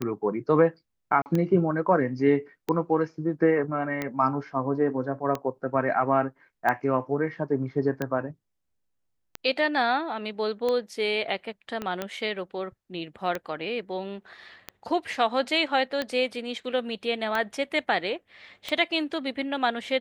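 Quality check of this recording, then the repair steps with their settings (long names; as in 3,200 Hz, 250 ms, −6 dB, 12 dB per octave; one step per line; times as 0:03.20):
scratch tick 45 rpm −15 dBFS
0:01.22–0:01.26: drop-out 39 ms
0:11.82: click −18 dBFS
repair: click removal
repair the gap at 0:01.22, 39 ms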